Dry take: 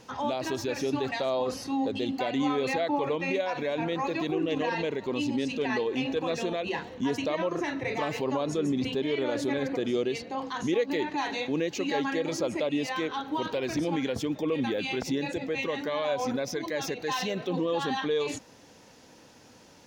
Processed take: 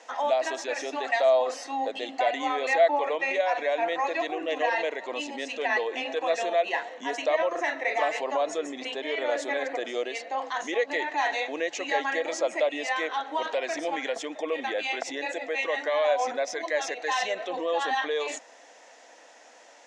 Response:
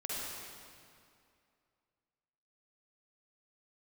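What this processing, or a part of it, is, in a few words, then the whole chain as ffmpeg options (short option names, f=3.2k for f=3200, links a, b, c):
phone speaker on a table: -af "highpass=f=380:w=0.5412,highpass=f=380:w=1.3066,equalizer=f=390:t=q:w=4:g=-8,equalizer=f=680:t=q:w=4:g=10,equalizer=f=1.9k:t=q:w=4:g=8,equalizer=f=4.6k:t=q:w=4:g=-5,equalizer=f=7.6k:t=q:w=4:g=5,lowpass=f=8.5k:w=0.5412,lowpass=f=8.5k:w=1.3066,volume=1.5dB"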